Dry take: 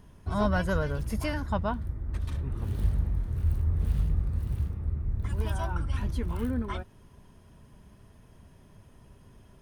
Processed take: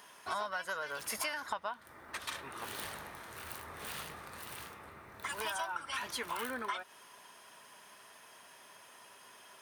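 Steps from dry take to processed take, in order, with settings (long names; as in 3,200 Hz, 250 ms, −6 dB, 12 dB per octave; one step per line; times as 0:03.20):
high-pass filter 1,000 Hz 12 dB per octave
downward compressor 20 to 1, threshold −45 dBFS, peak gain reduction 17 dB
level +11.5 dB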